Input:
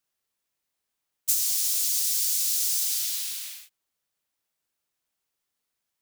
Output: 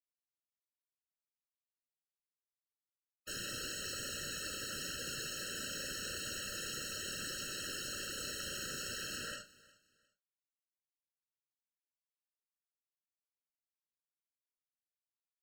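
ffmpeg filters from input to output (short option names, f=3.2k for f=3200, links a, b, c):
-filter_complex "[0:a]lowpass=f=1.4k:p=1,acompressor=threshold=-50dB:ratio=16,acrusher=bits=9:mix=0:aa=0.000001,aphaser=in_gain=1:out_gain=1:delay=3.4:decay=0.68:speed=0.68:type=triangular,aeval=exprs='(mod(316*val(0)+1,2)-1)/316':c=same,asetrate=17199,aresample=44100,aeval=exprs='0.00562*sin(PI/2*2.51*val(0)/0.00562)':c=same,afftfilt=real='hypot(re,im)*cos(2*PI*random(0))':imag='hypot(re,im)*sin(2*PI*random(1))':win_size=512:overlap=0.75,asplit=2[a][b];[b]adelay=35,volume=-11.5dB[c];[a][c]amix=inputs=2:normalize=0,aecho=1:1:358|716:0.0794|0.0214,afftfilt=real='re*eq(mod(floor(b*sr/1024/640),2),0)':imag='im*eq(mod(floor(b*sr/1024/640),2),0)':win_size=1024:overlap=0.75,volume=14dB"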